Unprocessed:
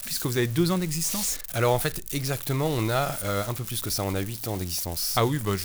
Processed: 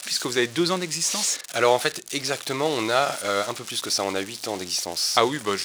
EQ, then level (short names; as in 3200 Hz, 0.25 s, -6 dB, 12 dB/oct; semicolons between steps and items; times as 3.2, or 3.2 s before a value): HPF 340 Hz 12 dB/oct; air absorption 97 m; high shelf 4000 Hz +10.5 dB; +5.0 dB